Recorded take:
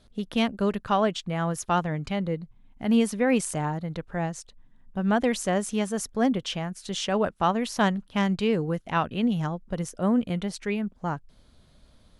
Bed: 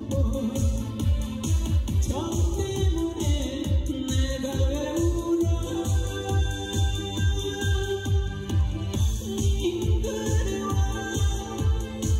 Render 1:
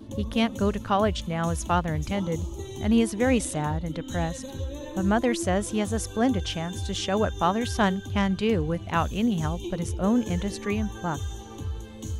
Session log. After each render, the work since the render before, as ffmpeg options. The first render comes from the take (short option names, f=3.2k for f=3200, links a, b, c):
-filter_complex "[1:a]volume=-9dB[a];[0:a][a]amix=inputs=2:normalize=0"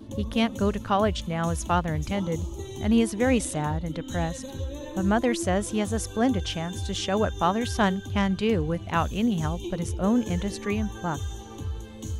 -af anull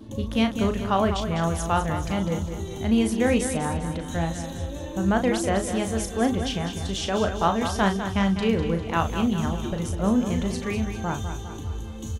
-filter_complex "[0:a]asplit=2[a][b];[b]adelay=36,volume=-7.5dB[c];[a][c]amix=inputs=2:normalize=0,asplit=2[d][e];[e]aecho=0:1:201|402|603|804|1005|1206:0.355|0.181|0.0923|0.0471|0.024|0.0122[f];[d][f]amix=inputs=2:normalize=0"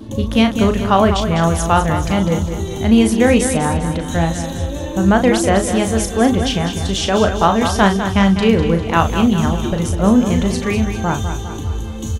-af "volume=9.5dB,alimiter=limit=-1dB:level=0:latency=1"